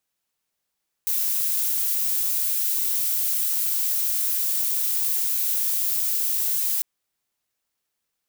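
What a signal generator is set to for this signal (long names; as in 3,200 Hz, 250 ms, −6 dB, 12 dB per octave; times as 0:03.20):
noise violet, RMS −23.5 dBFS 5.75 s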